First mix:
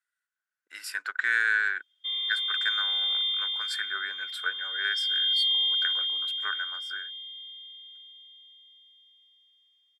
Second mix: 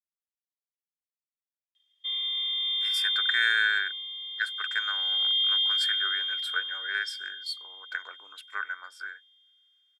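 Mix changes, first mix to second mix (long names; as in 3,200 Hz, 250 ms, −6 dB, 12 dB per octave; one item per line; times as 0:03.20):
speech: entry +2.10 s
master: add parametric band 160 Hz −12.5 dB 0.91 octaves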